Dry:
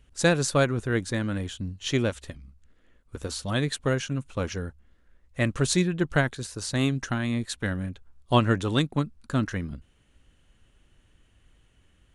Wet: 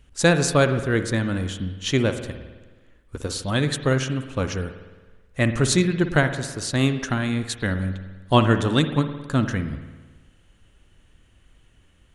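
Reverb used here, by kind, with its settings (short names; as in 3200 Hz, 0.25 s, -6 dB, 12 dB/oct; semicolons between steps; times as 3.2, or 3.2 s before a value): spring tank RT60 1.3 s, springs 53 ms, chirp 55 ms, DRR 9 dB; gain +4 dB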